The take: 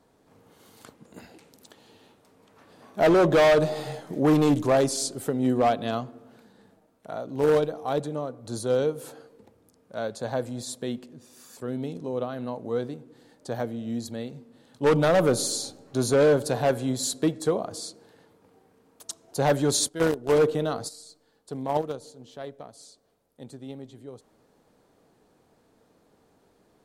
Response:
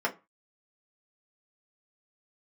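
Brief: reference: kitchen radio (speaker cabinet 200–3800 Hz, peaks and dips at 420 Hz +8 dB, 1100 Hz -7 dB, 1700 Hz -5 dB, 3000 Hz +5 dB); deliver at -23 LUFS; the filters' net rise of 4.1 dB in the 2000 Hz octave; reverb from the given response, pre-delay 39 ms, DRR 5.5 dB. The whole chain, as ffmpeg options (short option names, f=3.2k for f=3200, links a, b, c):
-filter_complex "[0:a]equalizer=f=2k:t=o:g=8.5,asplit=2[a][b];[1:a]atrim=start_sample=2205,adelay=39[c];[b][c]afir=irnorm=-1:irlink=0,volume=-15dB[d];[a][d]amix=inputs=2:normalize=0,highpass=200,equalizer=f=420:t=q:w=4:g=8,equalizer=f=1.1k:t=q:w=4:g=-7,equalizer=f=1.7k:t=q:w=4:g=-5,equalizer=f=3k:t=q:w=4:g=5,lowpass=f=3.8k:w=0.5412,lowpass=f=3.8k:w=1.3066,volume=-1.5dB"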